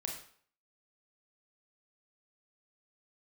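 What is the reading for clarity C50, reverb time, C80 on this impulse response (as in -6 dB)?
5.5 dB, 0.55 s, 9.0 dB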